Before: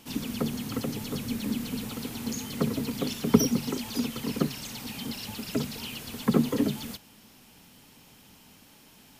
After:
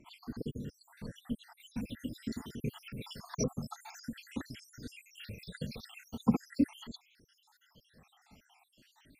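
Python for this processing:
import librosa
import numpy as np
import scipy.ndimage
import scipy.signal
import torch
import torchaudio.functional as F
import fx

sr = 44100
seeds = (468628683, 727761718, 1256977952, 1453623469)

y = fx.spec_dropout(x, sr, seeds[0], share_pct=76)
y = fx.lowpass(y, sr, hz=fx.steps((0.0, 1300.0), (1.6, 3100.0)), slope=6)
y = fx.comb_cascade(y, sr, direction='rising', hz=0.44)
y = y * librosa.db_to_amplitude(3.0)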